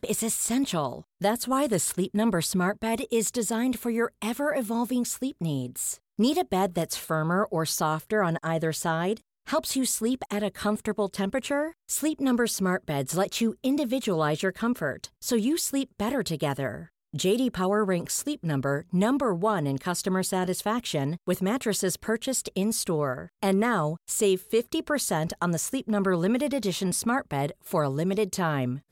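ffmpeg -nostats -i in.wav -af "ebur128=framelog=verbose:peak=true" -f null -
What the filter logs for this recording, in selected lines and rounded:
Integrated loudness:
  I:         -27.2 LUFS
  Threshold: -37.2 LUFS
Loudness range:
  LRA:         1.6 LU
  Threshold: -47.2 LUFS
  LRA low:   -28.0 LUFS
  LRA high:  -26.5 LUFS
True peak:
  Peak:      -13.3 dBFS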